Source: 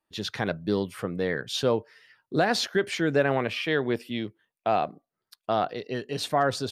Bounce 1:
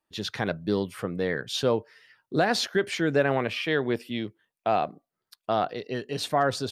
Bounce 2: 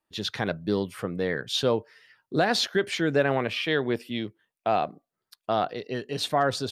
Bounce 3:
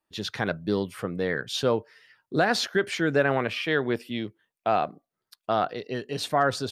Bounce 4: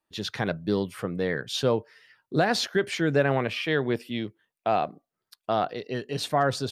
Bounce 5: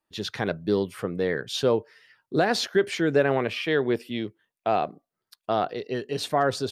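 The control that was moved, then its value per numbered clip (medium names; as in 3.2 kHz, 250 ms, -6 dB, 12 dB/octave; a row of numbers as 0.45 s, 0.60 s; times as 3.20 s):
dynamic bell, frequency: 9.9 kHz, 3.6 kHz, 1.4 kHz, 140 Hz, 400 Hz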